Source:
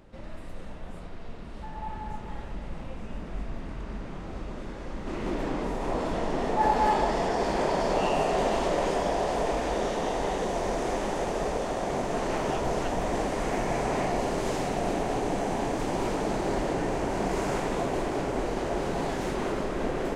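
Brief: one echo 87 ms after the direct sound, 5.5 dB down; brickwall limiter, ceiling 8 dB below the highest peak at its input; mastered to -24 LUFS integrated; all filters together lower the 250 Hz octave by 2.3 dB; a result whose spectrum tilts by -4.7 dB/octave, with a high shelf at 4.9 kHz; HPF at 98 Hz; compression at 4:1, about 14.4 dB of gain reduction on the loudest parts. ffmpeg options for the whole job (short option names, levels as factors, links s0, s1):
-af "highpass=98,equalizer=f=250:t=o:g=-3,highshelf=f=4900:g=-4,acompressor=threshold=0.0126:ratio=4,alimiter=level_in=3.55:limit=0.0631:level=0:latency=1,volume=0.282,aecho=1:1:87:0.531,volume=8.91"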